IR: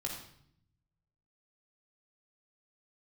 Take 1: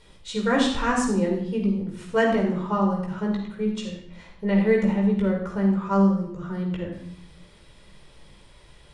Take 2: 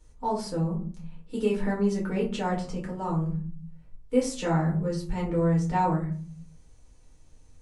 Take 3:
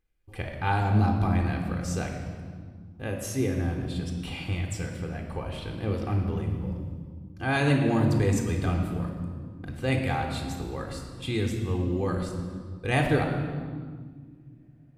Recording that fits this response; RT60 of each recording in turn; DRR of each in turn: 1; 0.65 s, 0.45 s, non-exponential decay; −1.0, −4.0, 3.0 decibels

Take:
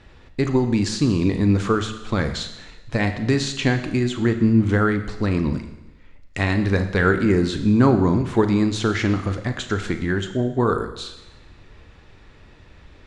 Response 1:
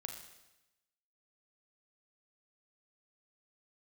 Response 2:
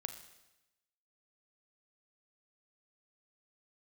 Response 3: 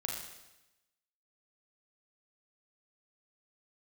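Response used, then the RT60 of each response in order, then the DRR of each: 2; 0.95, 1.0, 0.95 seconds; 3.0, 7.5, −1.5 decibels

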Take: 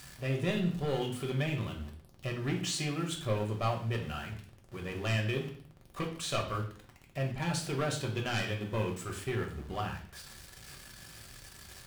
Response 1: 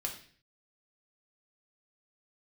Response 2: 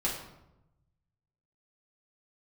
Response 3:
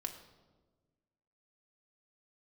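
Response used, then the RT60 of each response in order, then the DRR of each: 1; 0.45, 0.90, 1.3 seconds; 0.0, −5.0, 4.0 decibels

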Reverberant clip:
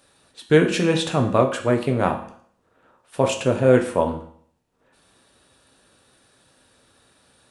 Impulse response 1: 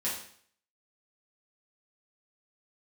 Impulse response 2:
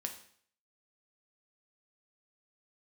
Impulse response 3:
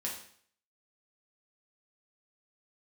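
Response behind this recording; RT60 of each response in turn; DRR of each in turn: 2; 0.55, 0.55, 0.55 seconds; −8.5, 3.5, −4.0 decibels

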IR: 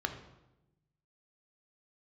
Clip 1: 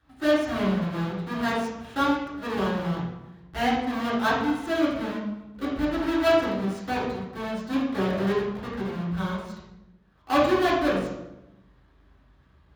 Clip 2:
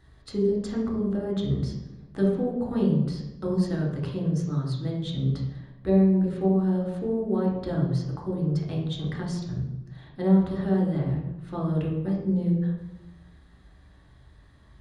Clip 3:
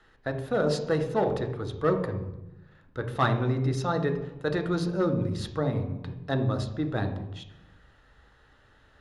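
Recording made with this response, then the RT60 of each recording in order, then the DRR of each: 3; 0.95, 0.95, 0.95 seconds; −7.5, −2.5, 6.5 decibels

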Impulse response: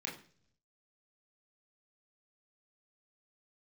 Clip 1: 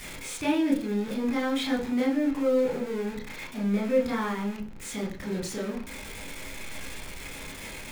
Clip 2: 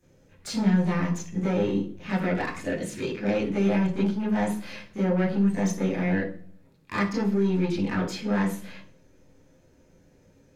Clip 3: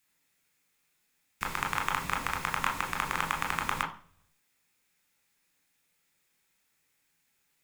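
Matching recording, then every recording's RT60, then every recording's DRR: 1; non-exponential decay, 0.50 s, non-exponential decay; −3.0, −9.5, 2.0 decibels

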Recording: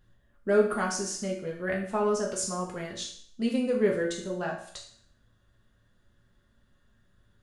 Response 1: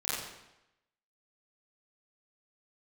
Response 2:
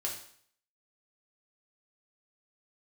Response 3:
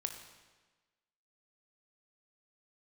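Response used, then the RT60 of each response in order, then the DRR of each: 2; 0.90, 0.60, 1.3 seconds; −11.0, −2.0, 5.0 decibels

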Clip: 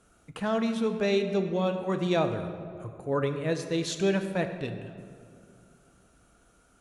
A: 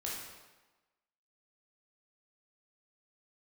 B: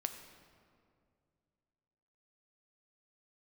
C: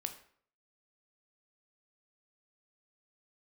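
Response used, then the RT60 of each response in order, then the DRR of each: B; 1.2, 2.3, 0.55 seconds; −5.0, 6.5, 6.5 decibels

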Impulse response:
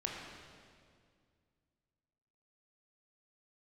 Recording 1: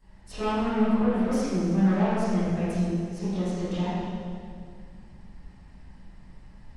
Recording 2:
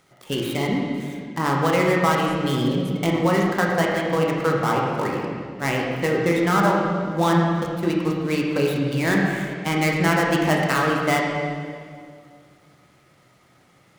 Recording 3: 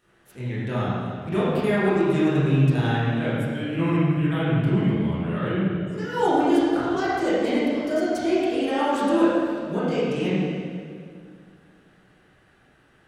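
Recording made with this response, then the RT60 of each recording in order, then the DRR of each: 2; 2.1, 2.1, 2.1 seconds; −17.0, −2.0, −10.5 decibels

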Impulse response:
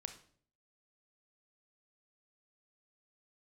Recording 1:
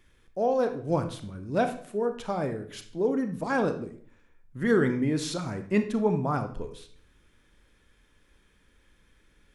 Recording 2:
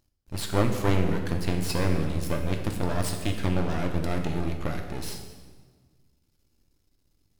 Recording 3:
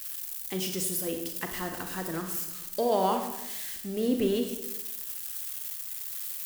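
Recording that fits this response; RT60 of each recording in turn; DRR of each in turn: 1; 0.55, 1.5, 0.95 seconds; 7.5, 3.5, 4.5 decibels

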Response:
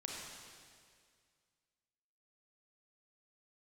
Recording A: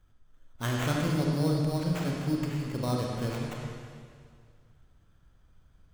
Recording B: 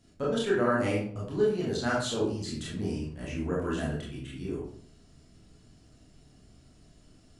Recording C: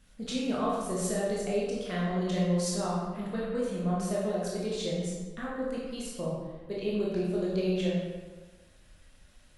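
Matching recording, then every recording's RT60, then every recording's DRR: A; 2.0, 0.55, 1.4 seconds; −2.0, −6.5, −6.0 decibels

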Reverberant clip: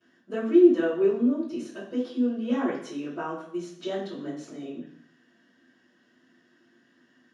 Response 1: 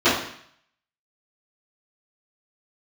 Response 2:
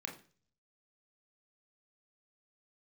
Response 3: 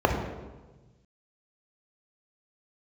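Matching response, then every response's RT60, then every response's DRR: 1; 0.65, 0.40, 1.2 seconds; −17.5, 1.0, 1.5 decibels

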